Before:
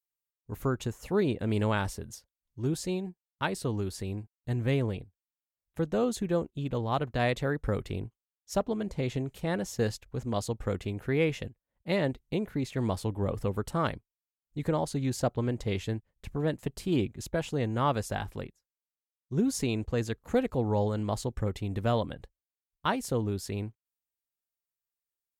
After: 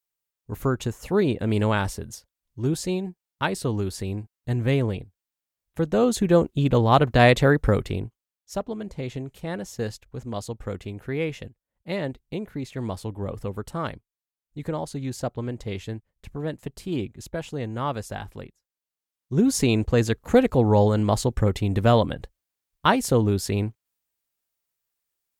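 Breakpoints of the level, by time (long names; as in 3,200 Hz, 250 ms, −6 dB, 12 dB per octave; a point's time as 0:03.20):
0:05.80 +5.5 dB
0:06.51 +12 dB
0:07.51 +12 dB
0:08.53 −0.5 dB
0:18.42 −0.5 dB
0:19.72 +9.5 dB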